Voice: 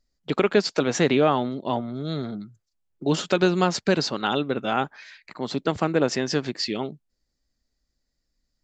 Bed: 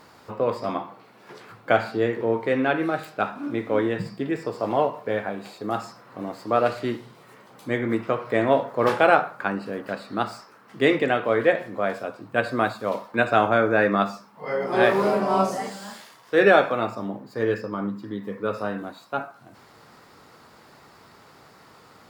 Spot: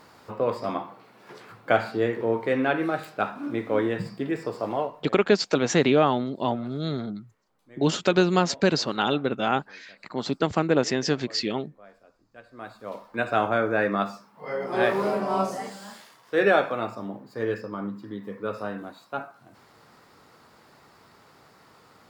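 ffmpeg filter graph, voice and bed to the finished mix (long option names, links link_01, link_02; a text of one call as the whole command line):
ffmpeg -i stem1.wav -i stem2.wav -filter_complex "[0:a]adelay=4750,volume=0dB[link_01];[1:a]volume=20dB,afade=type=out:start_time=4.54:duration=0.61:silence=0.0630957,afade=type=in:start_time=12.5:duration=0.9:silence=0.0841395[link_02];[link_01][link_02]amix=inputs=2:normalize=0" out.wav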